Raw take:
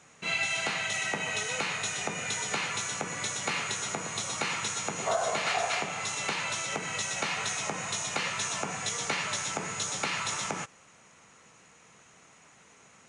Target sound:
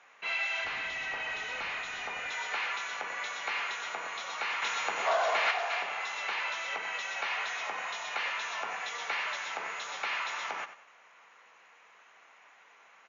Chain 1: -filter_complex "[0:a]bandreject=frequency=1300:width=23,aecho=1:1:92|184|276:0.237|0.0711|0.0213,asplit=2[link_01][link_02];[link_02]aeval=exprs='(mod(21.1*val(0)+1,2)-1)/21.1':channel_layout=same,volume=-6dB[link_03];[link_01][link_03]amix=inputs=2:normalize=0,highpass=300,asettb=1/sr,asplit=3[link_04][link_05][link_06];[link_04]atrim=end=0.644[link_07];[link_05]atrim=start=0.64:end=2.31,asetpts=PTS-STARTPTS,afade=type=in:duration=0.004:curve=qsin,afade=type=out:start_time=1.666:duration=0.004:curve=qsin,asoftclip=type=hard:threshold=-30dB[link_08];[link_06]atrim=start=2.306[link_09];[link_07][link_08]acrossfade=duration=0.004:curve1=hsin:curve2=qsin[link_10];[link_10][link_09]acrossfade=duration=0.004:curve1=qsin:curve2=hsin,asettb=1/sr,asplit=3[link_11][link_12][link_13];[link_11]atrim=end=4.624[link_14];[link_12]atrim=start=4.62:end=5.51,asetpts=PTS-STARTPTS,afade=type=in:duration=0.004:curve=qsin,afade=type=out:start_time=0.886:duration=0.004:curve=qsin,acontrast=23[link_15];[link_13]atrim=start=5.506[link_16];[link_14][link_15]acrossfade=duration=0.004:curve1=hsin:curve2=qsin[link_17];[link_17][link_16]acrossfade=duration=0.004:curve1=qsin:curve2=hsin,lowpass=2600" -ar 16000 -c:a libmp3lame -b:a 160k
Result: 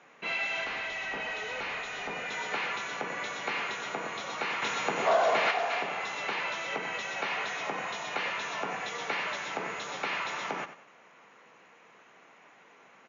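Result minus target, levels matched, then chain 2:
250 Hz band +12.5 dB
-filter_complex "[0:a]bandreject=frequency=1300:width=23,aecho=1:1:92|184|276:0.237|0.0711|0.0213,asplit=2[link_01][link_02];[link_02]aeval=exprs='(mod(21.1*val(0)+1,2)-1)/21.1':channel_layout=same,volume=-6dB[link_03];[link_01][link_03]amix=inputs=2:normalize=0,highpass=800,asettb=1/sr,asplit=3[link_04][link_05][link_06];[link_04]atrim=end=0.644[link_07];[link_05]atrim=start=0.64:end=2.31,asetpts=PTS-STARTPTS,afade=type=in:duration=0.004:curve=qsin,afade=type=out:start_time=1.666:duration=0.004:curve=qsin,asoftclip=type=hard:threshold=-30dB[link_08];[link_06]atrim=start=2.306[link_09];[link_07][link_08]acrossfade=duration=0.004:curve1=hsin:curve2=qsin[link_10];[link_10][link_09]acrossfade=duration=0.004:curve1=qsin:curve2=hsin,asettb=1/sr,asplit=3[link_11][link_12][link_13];[link_11]atrim=end=4.624[link_14];[link_12]atrim=start=4.62:end=5.51,asetpts=PTS-STARTPTS,afade=type=in:duration=0.004:curve=qsin,afade=type=out:start_time=0.886:duration=0.004:curve=qsin,acontrast=23[link_15];[link_13]atrim=start=5.506[link_16];[link_14][link_15]acrossfade=duration=0.004:curve1=hsin:curve2=qsin[link_17];[link_17][link_16]acrossfade=duration=0.004:curve1=qsin:curve2=hsin,lowpass=2600" -ar 16000 -c:a libmp3lame -b:a 160k

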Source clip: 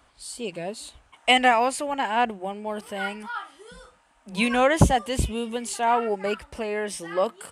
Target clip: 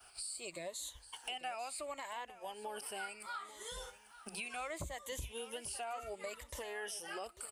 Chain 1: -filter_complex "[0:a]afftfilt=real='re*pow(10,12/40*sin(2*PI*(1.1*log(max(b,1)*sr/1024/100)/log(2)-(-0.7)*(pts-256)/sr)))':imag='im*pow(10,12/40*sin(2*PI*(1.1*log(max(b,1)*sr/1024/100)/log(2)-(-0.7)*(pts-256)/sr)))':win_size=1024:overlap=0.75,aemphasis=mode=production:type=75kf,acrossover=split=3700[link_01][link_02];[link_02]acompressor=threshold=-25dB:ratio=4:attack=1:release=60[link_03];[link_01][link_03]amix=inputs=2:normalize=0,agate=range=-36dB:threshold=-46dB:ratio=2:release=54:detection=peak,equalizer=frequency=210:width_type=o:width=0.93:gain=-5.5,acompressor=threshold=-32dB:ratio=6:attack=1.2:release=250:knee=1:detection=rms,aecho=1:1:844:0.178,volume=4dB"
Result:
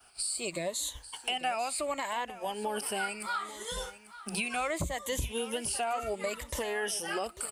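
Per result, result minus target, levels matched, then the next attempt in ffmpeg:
downward compressor: peak gain reduction −10 dB; 250 Hz band +4.0 dB
-filter_complex "[0:a]afftfilt=real='re*pow(10,12/40*sin(2*PI*(1.1*log(max(b,1)*sr/1024/100)/log(2)-(-0.7)*(pts-256)/sr)))':imag='im*pow(10,12/40*sin(2*PI*(1.1*log(max(b,1)*sr/1024/100)/log(2)-(-0.7)*(pts-256)/sr)))':win_size=1024:overlap=0.75,aemphasis=mode=production:type=75kf,acrossover=split=3700[link_01][link_02];[link_02]acompressor=threshold=-25dB:ratio=4:attack=1:release=60[link_03];[link_01][link_03]amix=inputs=2:normalize=0,agate=range=-36dB:threshold=-46dB:ratio=2:release=54:detection=peak,equalizer=frequency=210:width_type=o:width=0.93:gain=-5.5,acompressor=threshold=-44dB:ratio=6:attack=1.2:release=250:knee=1:detection=rms,aecho=1:1:844:0.178,volume=4dB"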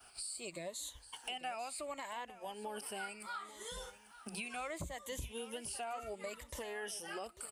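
250 Hz band +4.5 dB
-filter_complex "[0:a]afftfilt=real='re*pow(10,12/40*sin(2*PI*(1.1*log(max(b,1)*sr/1024/100)/log(2)-(-0.7)*(pts-256)/sr)))':imag='im*pow(10,12/40*sin(2*PI*(1.1*log(max(b,1)*sr/1024/100)/log(2)-(-0.7)*(pts-256)/sr)))':win_size=1024:overlap=0.75,aemphasis=mode=production:type=75kf,acrossover=split=3700[link_01][link_02];[link_02]acompressor=threshold=-25dB:ratio=4:attack=1:release=60[link_03];[link_01][link_03]amix=inputs=2:normalize=0,agate=range=-36dB:threshold=-46dB:ratio=2:release=54:detection=peak,equalizer=frequency=210:width_type=o:width=0.93:gain=-13.5,acompressor=threshold=-44dB:ratio=6:attack=1.2:release=250:knee=1:detection=rms,aecho=1:1:844:0.178,volume=4dB"

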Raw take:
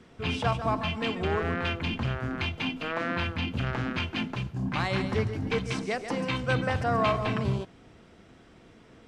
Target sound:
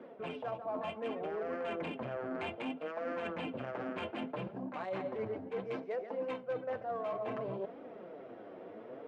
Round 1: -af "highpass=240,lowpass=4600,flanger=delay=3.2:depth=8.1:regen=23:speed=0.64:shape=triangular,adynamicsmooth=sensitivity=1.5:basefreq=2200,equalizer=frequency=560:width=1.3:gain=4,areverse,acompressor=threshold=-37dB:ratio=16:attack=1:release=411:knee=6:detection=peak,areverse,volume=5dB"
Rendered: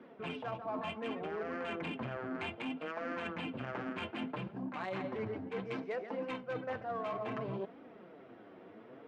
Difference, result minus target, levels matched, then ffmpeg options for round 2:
500 Hz band −2.5 dB
-af "highpass=240,lowpass=4600,flanger=delay=3.2:depth=8.1:regen=23:speed=0.64:shape=triangular,adynamicsmooth=sensitivity=1.5:basefreq=2200,equalizer=frequency=560:width=1.3:gain=13.5,areverse,acompressor=threshold=-37dB:ratio=16:attack=1:release=411:knee=6:detection=peak,areverse,volume=5dB"

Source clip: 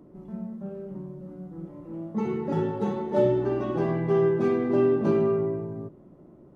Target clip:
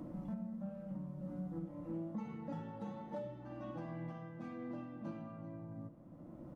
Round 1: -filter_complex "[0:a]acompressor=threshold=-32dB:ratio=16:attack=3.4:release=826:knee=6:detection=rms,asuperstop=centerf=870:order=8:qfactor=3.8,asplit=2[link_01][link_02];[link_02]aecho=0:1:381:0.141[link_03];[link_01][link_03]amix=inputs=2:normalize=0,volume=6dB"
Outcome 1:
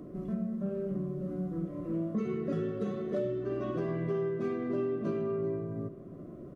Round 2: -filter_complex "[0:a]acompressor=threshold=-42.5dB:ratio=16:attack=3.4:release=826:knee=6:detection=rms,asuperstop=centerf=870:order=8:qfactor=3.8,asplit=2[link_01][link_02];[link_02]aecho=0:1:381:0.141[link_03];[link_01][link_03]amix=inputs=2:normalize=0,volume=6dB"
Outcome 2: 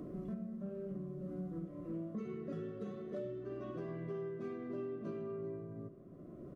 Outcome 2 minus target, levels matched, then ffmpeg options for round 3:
1,000 Hz band −6.5 dB
-filter_complex "[0:a]acompressor=threshold=-42.5dB:ratio=16:attack=3.4:release=826:knee=6:detection=rms,asuperstop=centerf=400:order=8:qfactor=3.8,asplit=2[link_01][link_02];[link_02]aecho=0:1:381:0.141[link_03];[link_01][link_03]amix=inputs=2:normalize=0,volume=6dB"

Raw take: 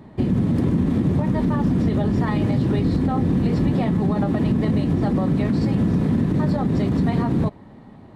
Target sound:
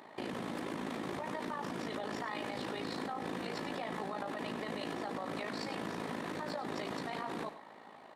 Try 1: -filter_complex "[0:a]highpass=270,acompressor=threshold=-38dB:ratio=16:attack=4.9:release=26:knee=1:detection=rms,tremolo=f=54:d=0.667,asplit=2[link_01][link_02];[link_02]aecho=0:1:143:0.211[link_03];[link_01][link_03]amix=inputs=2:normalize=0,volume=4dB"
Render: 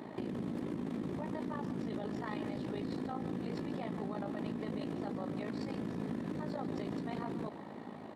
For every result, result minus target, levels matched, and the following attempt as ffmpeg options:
echo 42 ms late; 1,000 Hz band −5.5 dB
-filter_complex "[0:a]highpass=270,acompressor=threshold=-38dB:ratio=16:attack=4.9:release=26:knee=1:detection=rms,tremolo=f=54:d=0.667,asplit=2[link_01][link_02];[link_02]aecho=0:1:101:0.211[link_03];[link_01][link_03]amix=inputs=2:normalize=0,volume=4dB"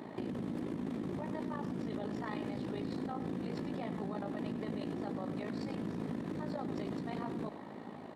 1,000 Hz band −5.5 dB
-filter_complex "[0:a]highpass=720,acompressor=threshold=-38dB:ratio=16:attack=4.9:release=26:knee=1:detection=rms,tremolo=f=54:d=0.667,asplit=2[link_01][link_02];[link_02]aecho=0:1:101:0.211[link_03];[link_01][link_03]amix=inputs=2:normalize=0,volume=4dB"

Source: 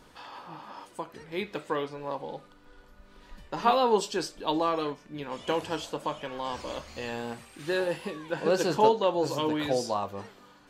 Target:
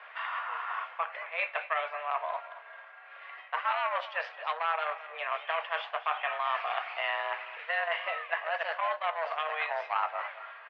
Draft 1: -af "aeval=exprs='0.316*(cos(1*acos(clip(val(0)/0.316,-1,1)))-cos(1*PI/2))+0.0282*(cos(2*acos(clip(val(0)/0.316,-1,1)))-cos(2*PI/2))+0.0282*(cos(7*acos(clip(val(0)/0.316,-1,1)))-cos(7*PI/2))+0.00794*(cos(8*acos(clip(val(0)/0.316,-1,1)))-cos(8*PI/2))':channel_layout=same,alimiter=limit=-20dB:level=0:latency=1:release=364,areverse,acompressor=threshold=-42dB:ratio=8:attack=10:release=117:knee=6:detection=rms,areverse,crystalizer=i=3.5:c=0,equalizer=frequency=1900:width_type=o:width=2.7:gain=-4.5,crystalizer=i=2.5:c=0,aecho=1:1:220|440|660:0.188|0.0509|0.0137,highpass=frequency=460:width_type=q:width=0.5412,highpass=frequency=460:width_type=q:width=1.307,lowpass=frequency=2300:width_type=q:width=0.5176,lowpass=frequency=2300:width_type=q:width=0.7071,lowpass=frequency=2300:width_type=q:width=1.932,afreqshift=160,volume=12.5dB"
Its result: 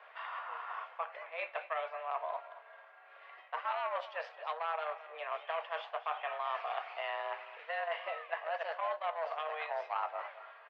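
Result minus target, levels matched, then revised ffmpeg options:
2,000 Hz band −3.0 dB
-af "aeval=exprs='0.316*(cos(1*acos(clip(val(0)/0.316,-1,1)))-cos(1*PI/2))+0.0282*(cos(2*acos(clip(val(0)/0.316,-1,1)))-cos(2*PI/2))+0.0282*(cos(7*acos(clip(val(0)/0.316,-1,1)))-cos(7*PI/2))+0.00794*(cos(8*acos(clip(val(0)/0.316,-1,1)))-cos(8*PI/2))':channel_layout=same,alimiter=limit=-20dB:level=0:latency=1:release=364,areverse,acompressor=threshold=-42dB:ratio=8:attack=10:release=117:knee=6:detection=rms,areverse,crystalizer=i=3.5:c=0,equalizer=frequency=1900:width_type=o:width=2.7:gain=5,crystalizer=i=2.5:c=0,aecho=1:1:220|440|660:0.188|0.0509|0.0137,highpass=frequency=460:width_type=q:width=0.5412,highpass=frequency=460:width_type=q:width=1.307,lowpass=frequency=2300:width_type=q:width=0.5176,lowpass=frequency=2300:width_type=q:width=0.7071,lowpass=frequency=2300:width_type=q:width=1.932,afreqshift=160,volume=12.5dB"

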